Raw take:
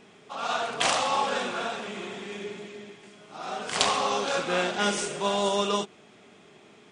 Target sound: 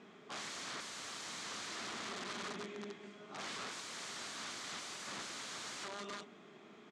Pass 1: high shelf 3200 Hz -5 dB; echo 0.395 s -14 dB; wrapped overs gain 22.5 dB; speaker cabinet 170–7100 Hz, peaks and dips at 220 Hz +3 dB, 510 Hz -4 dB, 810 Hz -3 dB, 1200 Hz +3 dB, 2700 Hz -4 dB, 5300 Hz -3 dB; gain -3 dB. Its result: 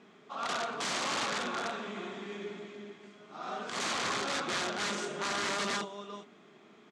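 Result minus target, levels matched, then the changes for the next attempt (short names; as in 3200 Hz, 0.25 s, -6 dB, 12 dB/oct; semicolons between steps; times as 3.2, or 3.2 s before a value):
wrapped overs: distortion -21 dB
change: wrapped overs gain 34 dB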